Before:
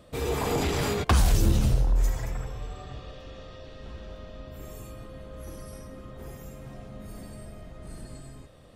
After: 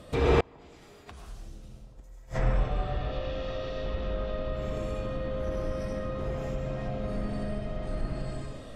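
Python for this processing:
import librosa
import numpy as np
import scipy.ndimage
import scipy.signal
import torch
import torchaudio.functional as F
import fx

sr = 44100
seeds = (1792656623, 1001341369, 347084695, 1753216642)

y = fx.rev_freeverb(x, sr, rt60_s=0.71, hf_ratio=0.85, predelay_ms=60, drr_db=-1.5)
y = fx.gate_flip(y, sr, shuts_db=-16.0, range_db=-33)
y = fx.env_lowpass_down(y, sr, base_hz=2900.0, full_db=-31.5)
y = F.gain(torch.from_numpy(y), 5.0).numpy()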